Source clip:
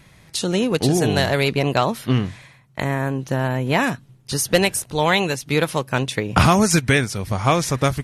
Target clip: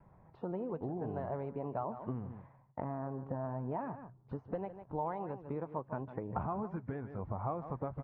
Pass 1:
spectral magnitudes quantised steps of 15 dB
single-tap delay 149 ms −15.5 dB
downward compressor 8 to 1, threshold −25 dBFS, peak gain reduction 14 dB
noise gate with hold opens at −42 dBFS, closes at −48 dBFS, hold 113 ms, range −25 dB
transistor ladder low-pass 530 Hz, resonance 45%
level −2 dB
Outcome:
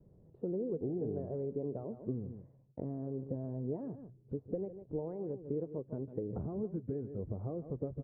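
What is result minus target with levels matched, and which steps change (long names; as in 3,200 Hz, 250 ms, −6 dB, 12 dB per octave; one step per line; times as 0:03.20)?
1,000 Hz band −17.0 dB
change: transistor ladder low-pass 1,100 Hz, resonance 45%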